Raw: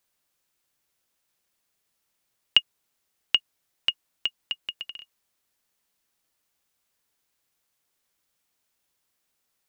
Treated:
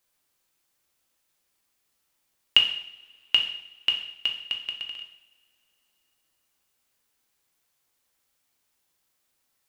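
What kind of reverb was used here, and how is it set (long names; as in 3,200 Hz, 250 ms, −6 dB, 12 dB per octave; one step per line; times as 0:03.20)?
coupled-rooms reverb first 0.66 s, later 3.1 s, from −25 dB, DRR 2 dB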